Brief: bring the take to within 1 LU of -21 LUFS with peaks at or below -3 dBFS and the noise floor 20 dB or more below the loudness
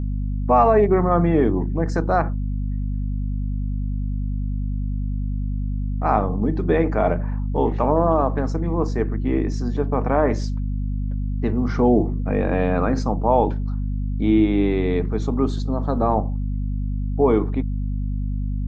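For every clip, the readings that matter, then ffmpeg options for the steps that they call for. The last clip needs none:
hum 50 Hz; harmonics up to 250 Hz; hum level -21 dBFS; loudness -22.0 LUFS; peak -4.5 dBFS; loudness target -21.0 LUFS
-> -af "bandreject=f=50:t=h:w=6,bandreject=f=100:t=h:w=6,bandreject=f=150:t=h:w=6,bandreject=f=200:t=h:w=6,bandreject=f=250:t=h:w=6"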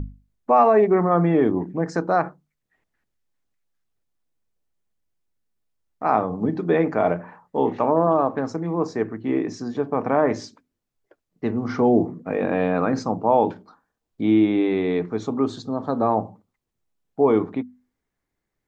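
hum none; loudness -22.0 LUFS; peak -5.5 dBFS; loudness target -21.0 LUFS
-> -af "volume=1dB"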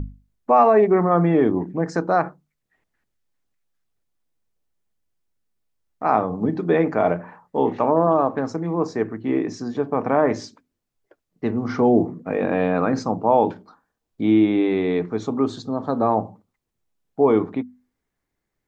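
loudness -21.0 LUFS; peak -4.5 dBFS; noise floor -80 dBFS

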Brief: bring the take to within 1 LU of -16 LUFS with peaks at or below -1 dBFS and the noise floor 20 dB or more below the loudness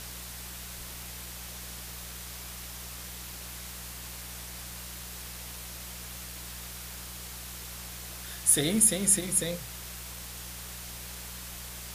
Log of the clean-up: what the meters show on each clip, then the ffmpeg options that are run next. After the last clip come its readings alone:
hum 60 Hz; harmonics up to 180 Hz; hum level -45 dBFS; noise floor -42 dBFS; noise floor target -52 dBFS; loudness -32.0 LUFS; peak -8.0 dBFS; loudness target -16.0 LUFS
-> -af "bandreject=f=60:t=h:w=4,bandreject=f=120:t=h:w=4,bandreject=f=180:t=h:w=4"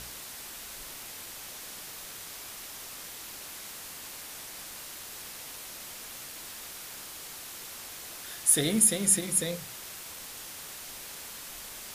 hum none; noise floor -43 dBFS; noise floor target -52 dBFS
-> -af "afftdn=nr=9:nf=-43"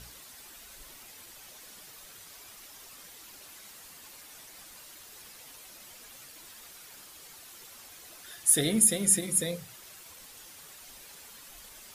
noise floor -50 dBFS; loudness -24.0 LUFS; peak -8.0 dBFS; loudness target -16.0 LUFS
-> -af "volume=8dB,alimiter=limit=-1dB:level=0:latency=1"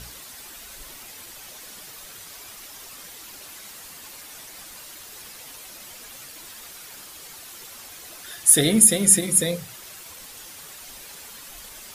loudness -16.0 LUFS; peak -1.0 dBFS; noise floor -42 dBFS

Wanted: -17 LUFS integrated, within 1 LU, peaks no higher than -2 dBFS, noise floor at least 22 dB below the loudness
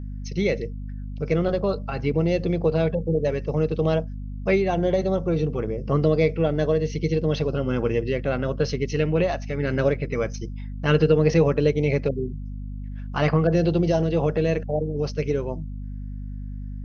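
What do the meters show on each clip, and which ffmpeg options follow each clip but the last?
hum 50 Hz; harmonics up to 250 Hz; hum level -30 dBFS; loudness -23.5 LUFS; peak -6.5 dBFS; loudness target -17.0 LUFS
-> -af "bandreject=f=50:t=h:w=4,bandreject=f=100:t=h:w=4,bandreject=f=150:t=h:w=4,bandreject=f=200:t=h:w=4,bandreject=f=250:t=h:w=4"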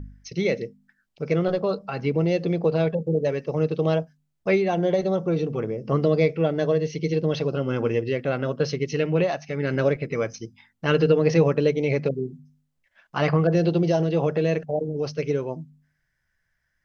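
hum none; loudness -24.0 LUFS; peak -7.0 dBFS; loudness target -17.0 LUFS
-> -af "volume=7dB,alimiter=limit=-2dB:level=0:latency=1"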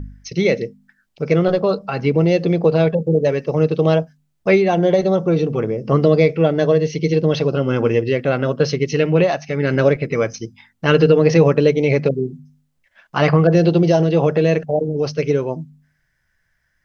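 loudness -17.0 LUFS; peak -2.0 dBFS; noise floor -68 dBFS

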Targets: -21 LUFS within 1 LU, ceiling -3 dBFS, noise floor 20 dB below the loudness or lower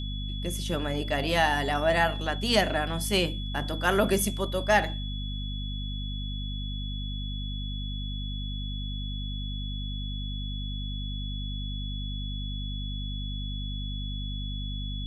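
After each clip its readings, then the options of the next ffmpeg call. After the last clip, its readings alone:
hum 50 Hz; harmonics up to 250 Hz; hum level -31 dBFS; steady tone 3400 Hz; tone level -39 dBFS; loudness -30.0 LUFS; peak -9.0 dBFS; loudness target -21.0 LUFS
-> -af "bandreject=f=50:t=h:w=6,bandreject=f=100:t=h:w=6,bandreject=f=150:t=h:w=6,bandreject=f=200:t=h:w=6,bandreject=f=250:t=h:w=6"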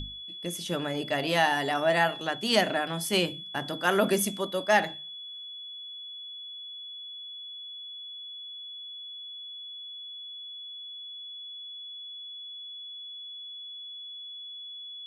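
hum none; steady tone 3400 Hz; tone level -39 dBFS
-> -af "bandreject=f=3.4k:w=30"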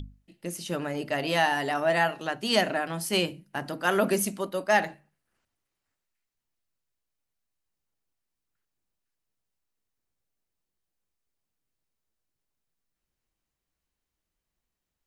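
steady tone none; loudness -27.0 LUFS; peak -9.5 dBFS; loudness target -21.0 LUFS
-> -af "volume=6dB"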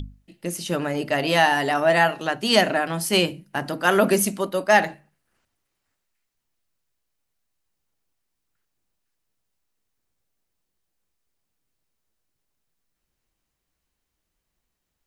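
loudness -21.0 LUFS; peak -3.5 dBFS; noise floor -80 dBFS

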